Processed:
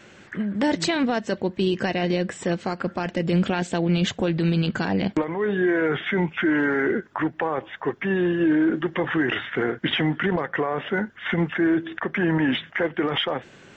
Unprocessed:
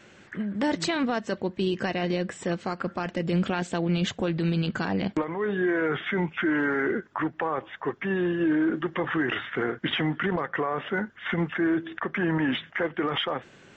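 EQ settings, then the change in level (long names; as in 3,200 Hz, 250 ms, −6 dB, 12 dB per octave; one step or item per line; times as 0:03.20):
dynamic equaliser 1,200 Hz, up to −5 dB, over −44 dBFS, Q 3.3
+4.0 dB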